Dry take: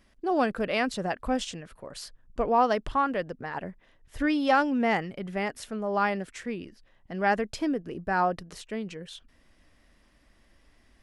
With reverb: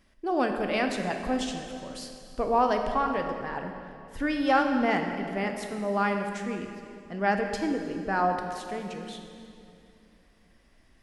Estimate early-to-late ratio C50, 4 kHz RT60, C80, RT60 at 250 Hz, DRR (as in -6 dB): 5.0 dB, 2.2 s, 6.0 dB, 3.2 s, 4.0 dB